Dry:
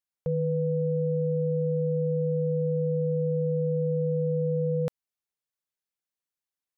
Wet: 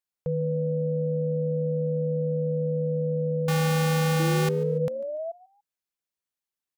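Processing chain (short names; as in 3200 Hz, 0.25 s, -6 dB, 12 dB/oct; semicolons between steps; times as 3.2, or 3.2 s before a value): 3.48–4.49 half-waves squared off; 4.19–5.32 painted sound rise 320–680 Hz -32 dBFS; frequency-shifting echo 0.145 s, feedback 30%, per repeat +74 Hz, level -21.5 dB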